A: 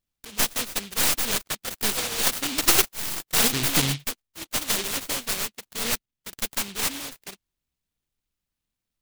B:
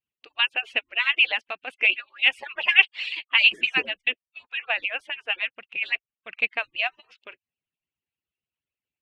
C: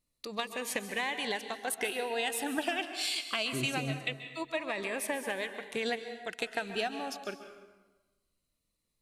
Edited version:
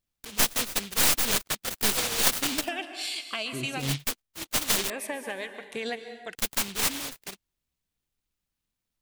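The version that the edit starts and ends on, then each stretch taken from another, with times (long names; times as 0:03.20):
A
0:02.61–0:03.87: punch in from C, crossfade 0.16 s
0:04.90–0:06.35: punch in from C
not used: B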